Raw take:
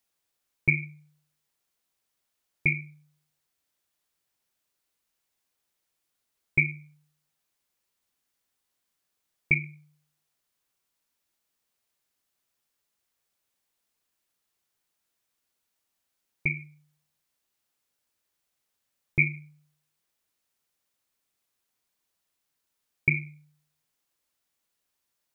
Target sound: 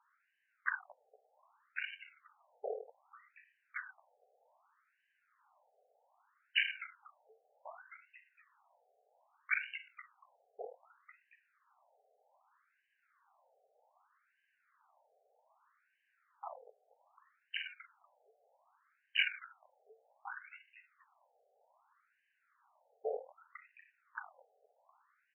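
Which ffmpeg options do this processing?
ffmpeg -i in.wav -filter_complex "[0:a]highshelf=frequency=1600:width_type=q:width=1.5:gain=-12.5,acompressor=threshold=-34dB:ratio=3,asplit=4[link_01][link_02][link_03][link_04];[link_02]asetrate=29433,aresample=44100,atempo=1.49831,volume=-2dB[link_05];[link_03]asetrate=33038,aresample=44100,atempo=1.33484,volume=-9dB[link_06];[link_04]asetrate=55563,aresample=44100,atempo=0.793701,volume=-1dB[link_07];[link_01][link_05][link_06][link_07]amix=inputs=4:normalize=0,asplit=2[link_08][link_09];[link_09]asplit=3[link_10][link_11][link_12];[link_10]adelay=238,afreqshift=-150,volume=-21dB[link_13];[link_11]adelay=476,afreqshift=-300,volume=-28.1dB[link_14];[link_12]adelay=714,afreqshift=-450,volume=-35.3dB[link_15];[link_13][link_14][link_15]amix=inputs=3:normalize=0[link_16];[link_08][link_16]amix=inputs=2:normalize=0,asoftclip=type=tanh:threshold=-35.5dB,asplit=2[link_17][link_18];[link_18]aecho=0:1:1101:0.473[link_19];[link_17][link_19]amix=inputs=2:normalize=0,afftfilt=real='re*between(b*sr/1024,560*pow(2200/560,0.5+0.5*sin(2*PI*0.64*pts/sr))/1.41,560*pow(2200/560,0.5+0.5*sin(2*PI*0.64*pts/sr))*1.41)':imag='im*between(b*sr/1024,560*pow(2200/560,0.5+0.5*sin(2*PI*0.64*pts/sr))/1.41,560*pow(2200/560,0.5+0.5*sin(2*PI*0.64*pts/sr))*1.41)':win_size=1024:overlap=0.75,volume=17dB" out.wav

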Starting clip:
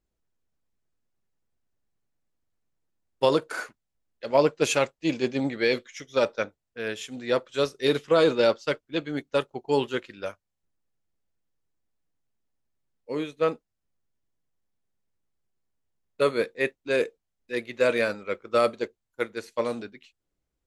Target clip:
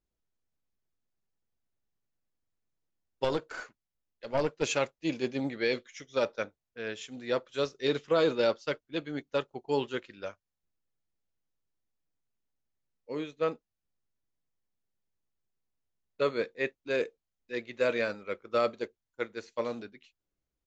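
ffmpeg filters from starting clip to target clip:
ffmpeg -i in.wav -filter_complex "[0:a]aresample=16000,aresample=44100,asettb=1/sr,asplit=3[link_01][link_02][link_03];[link_01]atrim=end=3.244[link_04];[link_02]atrim=start=3.24:end=4.63,asetpts=PTS-STARTPTS,afade=type=in:duration=0.004:curve=qsin,afade=type=out:start_time=1.386:duration=0.004:curve=qsin,aeval=exprs='(tanh(5.62*val(0)+0.5)-tanh(0.5))/5.62':channel_layout=same[link_05];[link_03]atrim=start=4.626[link_06];[link_04][link_05]acrossfade=duration=0.004:curve1=hsin:curve2=qsin[link_07];[link_07][link_06]acrossfade=duration=0.004:curve1=qsin:curve2=hsin,volume=-5.5dB" out.wav

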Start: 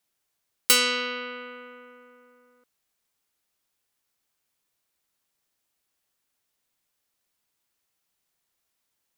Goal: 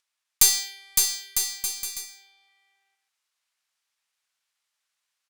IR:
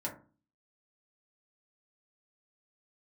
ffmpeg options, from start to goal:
-filter_complex "[0:a]highpass=500,asetrate=76440,aresample=44100,aderivative,asplit=2[link_01][link_02];[link_02]acompressor=mode=upward:threshold=-34dB:ratio=2.5,volume=-0.5dB[link_03];[link_01][link_03]amix=inputs=2:normalize=0,asetrate=40440,aresample=44100,atempo=1.09051,adynamicsmooth=sensitivity=7:basefreq=1500,aeval=exprs='(tanh(6.31*val(0)+0.75)-tanh(0.75))/6.31':channel_layout=same,highshelf=frequency=4700:gain=11.5,aecho=1:1:560|952|1226|1418|1553:0.631|0.398|0.251|0.158|0.1"

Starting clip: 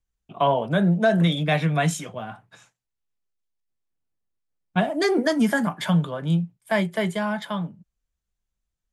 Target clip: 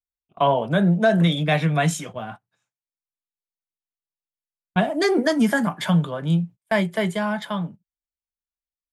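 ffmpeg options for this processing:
ffmpeg -i in.wav -af "agate=range=-24dB:threshold=-38dB:ratio=16:detection=peak,volume=1.5dB" out.wav

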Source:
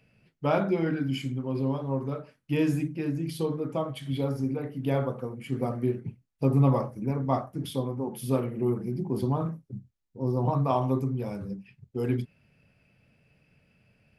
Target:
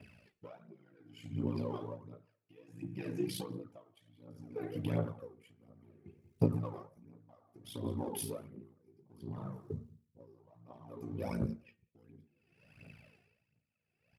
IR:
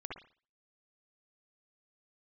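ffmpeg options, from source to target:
-filter_complex "[0:a]asplit=2[link_01][link_02];[link_02]asoftclip=type=hard:threshold=-27dB,volume=-7.5dB[link_03];[link_01][link_03]amix=inputs=2:normalize=0,acompressor=threshold=-34dB:ratio=12,asplit=2[link_04][link_05];[link_05]adelay=182,lowpass=frequency=4700:poles=1,volume=-20dB,asplit=2[link_06][link_07];[link_07]adelay=182,lowpass=frequency=4700:poles=1,volume=0.24[link_08];[link_04][link_06][link_08]amix=inputs=3:normalize=0,aeval=exprs='val(0)*sin(2*PI*28*n/s)':channel_layout=same,aphaser=in_gain=1:out_gain=1:delay=2.9:decay=0.64:speed=1.4:type=triangular,asplit=2[link_09][link_10];[1:a]atrim=start_sample=2205,asetrate=26460,aresample=44100[link_11];[link_10][link_11]afir=irnorm=-1:irlink=0,volume=-19dB[link_12];[link_09][link_12]amix=inputs=2:normalize=0,flanger=delay=3.1:depth=5.7:regen=-71:speed=0.26:shape=sinusoidal,highpass=95,bandreject=frequency=232.4:width_type=h:width=4,bandreject=frequency=464.8:width_type=h:width=4,bandreject=frequency=697.2:width_type=h:width=4,bandreject=frequency=929.6:width_type=h:width=4,bandreject=frequency=1162:width_type=h:width=4,bandreject=frequency=1394.4:width_type=h:width=4,bandreject=frequency=1626.8:width_type=h:width=4,bandreject=frequency=1859.2:width_type=h:width=4,bandreject=frequency=2091.6:width_type=h:width=4,bandreject=frequency=2324:width_type=h:width=4,bandreject=frequency=2556.4:width_type=h:width=4,bandreject=frequency=2788.8:width_type=h:width=4,bandreject=frequency=3021.2:width_type=h:width=4,bandreject=frequency=3253.6:width_type=h:width=4,bandreject=frequency=3486:width_type=h:width=4,bandreject=frequency=3718.4:width_type=h:width=4,bandreject=frequency=3950.8:width_type=h:width=4,bandreject=frequency=4183.2:width_type=h:width=4,bandreject=frequency=4415.6:width_type=h:width=4,aeval=exprs='val(0)*pow(10,-29*(0.5-0.5*cos(2*PI*0.62*n/s))/20)':channel_layout=same,volume=8.5dB"

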